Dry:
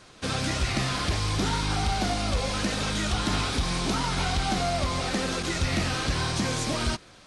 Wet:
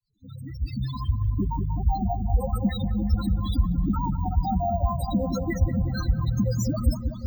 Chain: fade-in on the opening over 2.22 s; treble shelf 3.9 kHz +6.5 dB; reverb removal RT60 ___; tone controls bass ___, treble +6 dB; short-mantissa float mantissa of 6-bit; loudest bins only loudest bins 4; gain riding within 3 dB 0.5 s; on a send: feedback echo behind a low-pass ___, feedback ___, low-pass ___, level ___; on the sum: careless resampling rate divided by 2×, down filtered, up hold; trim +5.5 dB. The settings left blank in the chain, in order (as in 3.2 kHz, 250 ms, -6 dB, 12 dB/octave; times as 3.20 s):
0.54 s, +3 dB, 188 ms, 66%, 1.1 kHz, -7 dB